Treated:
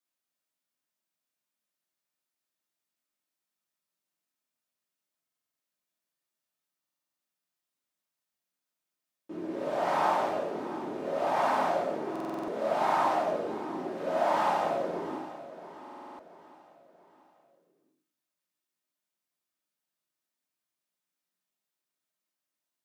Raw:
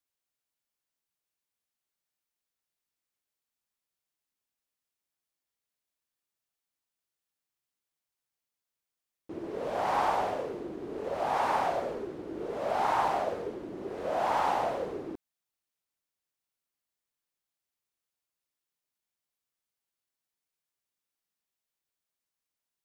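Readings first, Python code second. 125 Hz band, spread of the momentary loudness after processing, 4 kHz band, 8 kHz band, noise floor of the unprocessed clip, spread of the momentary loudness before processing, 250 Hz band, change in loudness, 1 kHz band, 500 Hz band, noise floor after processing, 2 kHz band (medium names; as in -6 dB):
0.0 dB, 18 LU, +0.5 dB, 0.0 dB, under -85 dBFS, 12 LU, +3.5 dB, +1.5 dB, +1.0 dB, +2.5 dB, under -85 dBFS, +1.5 dB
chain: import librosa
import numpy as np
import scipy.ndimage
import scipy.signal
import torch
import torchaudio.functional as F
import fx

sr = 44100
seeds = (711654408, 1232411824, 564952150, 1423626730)

y = scipy.signal.sosfilt(scipy.signal.butter(4, 130.0, 'highpass', fs=sr, output='sos'), x)
y = fx.echo_feedback(y, sr, ms=683, feedback_pct=44, wet_db=-14.5)
y = fx.room_shoebox(y, sr, seeds[0], volume_m3=370.0, walls='furnished', distance_m=2.7)
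y = fx.buffer_glitch(y, sr, at_s=(5.23, 6.81, 12.11, 15.82), block=2048, repeats=7)
y = y * 10.0 ** (-3.5 / 20.0)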